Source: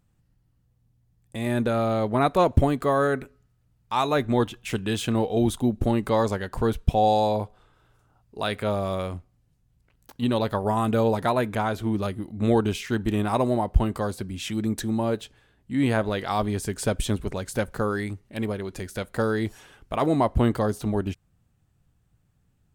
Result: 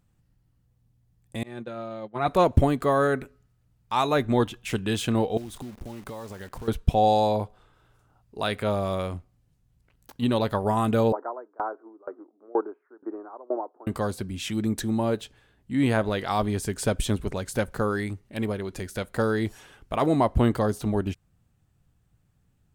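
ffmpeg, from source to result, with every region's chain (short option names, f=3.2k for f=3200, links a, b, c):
-filter_complex "[0:a]asettb=1/sr,asplit=3[a][b][c];[a]atrim=end=1.434[d];[b]atrim=start=1.43:end=2.28,asetpts=PTS-STARTPTS,afade=t=in:d=0.004:c=qsin,afade=t=out:st=0.846:d=0.004:c=qsin,agate=range=-33dB:threshold=-15dB:ratio=3:release=100:detection=peak,highpass=100,lowpass=6.1k,aecho=1:1:5.7:0.56,atrim=end_sample=37485[e];[c]atrim=start=2.276[f];[d][e]acrossfade=d=0.004:c1=hsin:c2=qsin[g];[g][f]acrossfade=d=0.004:c1=qsin:c2=hsin,asettb=1/sr,asplit=3[h][i][j];[h]atrim=end=5.374[k];[i]atrim=start=5.37:end=6.68,asetpts=PTS-STARTPTS,afade=t=in:d=0.004:c=qsin,afade=t=out:st=1.306:d=0.004:c=qsin,acompressor=threshold=-34dB:ratio=10:attack=3.2:release=140:knee=1:detection=peak,acrusher=bits=9:dc=4:mix=0:aa=0.000001[l];[j]atrim=start=6.676[m];[k][l]acrossfade=d=0.004:c1=hsin:c2=qsin[n];[n][m]acrossfade=d=0.004:c1=qsin:c2=hsin,asettb=1/sr,asplit=3[o][p][q];[o]atrim=end=11.124[r];[p]atrim=start=11.12:end=13.87,asetpts=PTS-STARTPTS,afade=t=in:d=0.004:c=qsin,afade=t=out:st=2.746:d=0.004:c=qsin,asuperpass=centerf=660:order=12:qfactor=0.58,aeval=exprs='val(0)*pow(10,-26*if(lt(mod(2.1*n/s,1),2*abs(2.1)/1000),1-mod(2.1*n/s,1)/(2*abs(2.1)/1000),(mod(2.1*n/s,1)-2*abs(2.1)/1000)/(1-2*abs(2.1)/1000))/20)':c=same[s];[q]atrim=start=13.866[t];[r][s]acrossfade=d=0.004:c1=hsin:c2=qsin[u];[u][t]acrossfade=d=0.004:c1=qsin:c2=hsin"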